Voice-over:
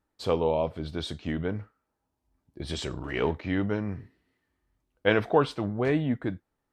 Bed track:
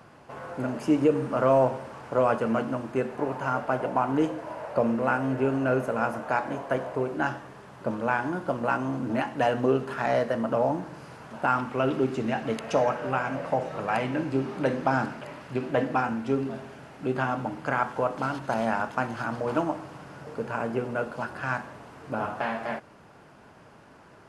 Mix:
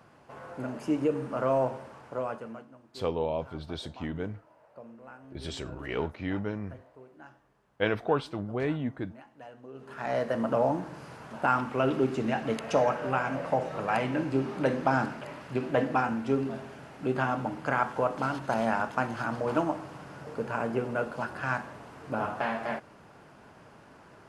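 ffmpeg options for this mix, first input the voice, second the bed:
-filter_complex "[0:a]adelay=2750,volume=0.596[s0];[1:a]volume=7.08,afade=t=out:st=1.81:d=0.87:silence=0.125893,afade=t=in:st=9.73:d=0.69:silence=0.0749894[s1];[s0][s1]amix=inputs=2:normalize=0"

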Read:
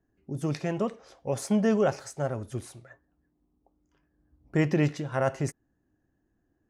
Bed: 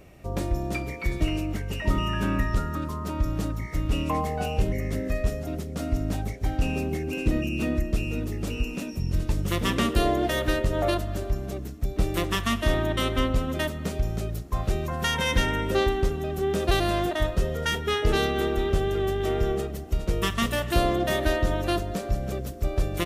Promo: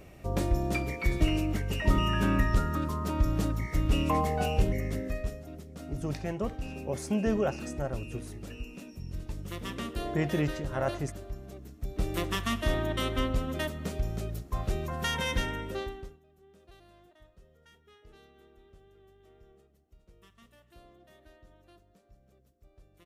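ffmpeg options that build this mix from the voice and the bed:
-filter_complex "[0:a]adelay=5600,volume=0.596[s0];[1:a]volume=2.24,afade=t=out:st=4.49:d=0.95:silence=0.251189,afade=t=in:st=11.61:d=0.53:silence=0.421697,afade=t=out:st=15.17:d=1.03:silence=0.0375837[s1];[s0][s1]amix=inputs=2:normalize=0"

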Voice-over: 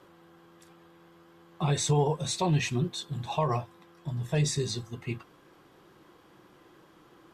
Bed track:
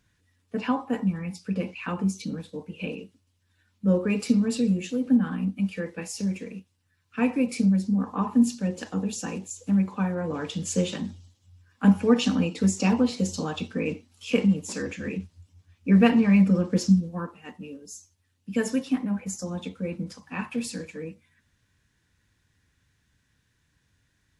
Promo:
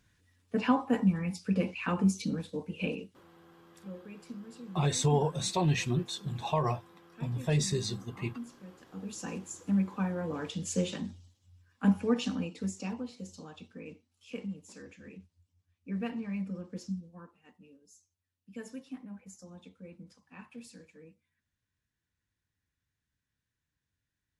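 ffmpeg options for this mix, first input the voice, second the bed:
-filter_complex "[0:a]adelay=3150,volume=0.841[s0];[1:a]volume=6.68,afade=t=out:st=2.86:d=0.71:silence=0.0794328,afade=t=in:st=8.87:d=0.45:silence=0.141254,afade=t=out:st=11.55:d=1.51:silence=0.251189[s1];[s0][s1]amix=inputs=2:normalize=0"

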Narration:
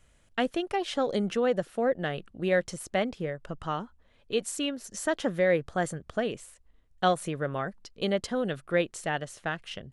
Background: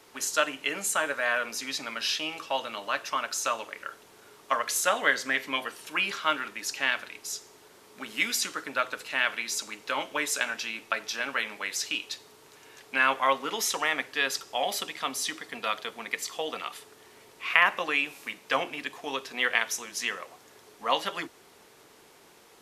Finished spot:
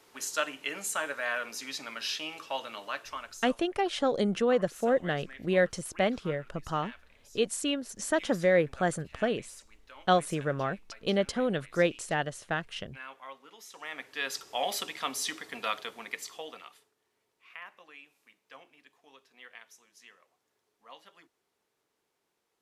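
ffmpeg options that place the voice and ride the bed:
-filter_complex "[0:a]adelay=3050,volume=1.06[s0];[1:a]volume=5.31,afade=t=out:st=2.81:d=0.71:silence=0.149624,afade=t=in:st=13.71:d=0.95:silence=0.105925,afade=t=out:st=15.66:d=1.26:silence=0.0749894[s1];[s0][s1]amix=inputs=2:normalize=0"

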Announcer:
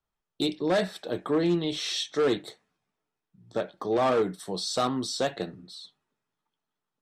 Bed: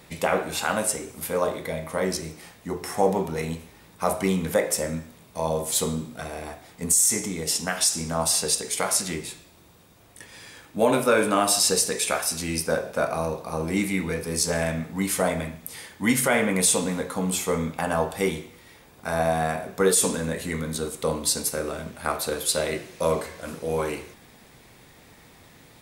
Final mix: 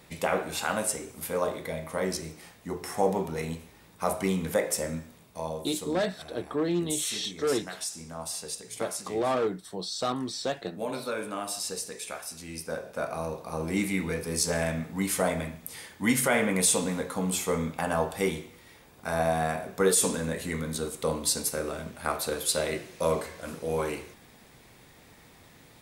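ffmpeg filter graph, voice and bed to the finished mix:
-filter_complex "[0:a]adelay=5250,volume=0.708[s0];[1:a]volume=2,afade=t=out:st=5.15:d=0.54:silence=0.354813,afade=t=in:st=12.44:d=1.42:silence=0.316228[s1];[s0][s1]amix=inputs=2:normalize=0"

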